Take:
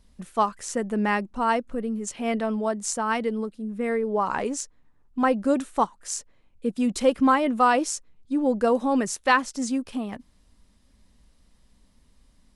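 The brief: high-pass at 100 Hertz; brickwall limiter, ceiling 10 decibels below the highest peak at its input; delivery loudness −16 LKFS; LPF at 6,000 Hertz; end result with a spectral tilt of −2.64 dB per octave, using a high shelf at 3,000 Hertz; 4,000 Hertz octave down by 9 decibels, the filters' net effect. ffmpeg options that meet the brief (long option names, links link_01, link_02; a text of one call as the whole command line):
ffmpeg -i in.wav -af "highpass=100,lowpass=6000,highshelf=frequency=3000:gain=-7,equalizer=frequency=4000:width_type=o:gain=-6.5,volume=12.5dB,alimiter=limit=-5.5dB:level=0:latency=1" out.wav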